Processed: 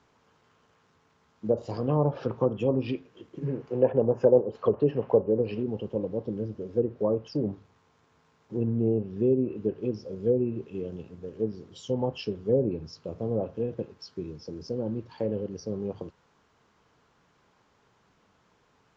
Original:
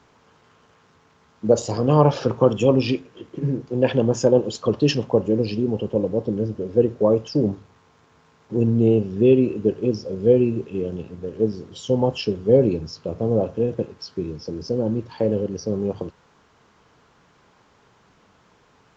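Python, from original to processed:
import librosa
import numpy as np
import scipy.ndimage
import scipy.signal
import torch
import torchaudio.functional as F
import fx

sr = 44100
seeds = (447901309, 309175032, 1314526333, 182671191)

y = fx.spec_box(x, sr, start_s=3.46, length_s=2.16, low_hz=380.0, high_hz=3100.0, gain_db=7)
y = fx.env_lowpass_down(y, sr, base_hz=740.0, full_db=-10.5)
y = F.gain(torch.from_numpy(y), -8.5).numpy()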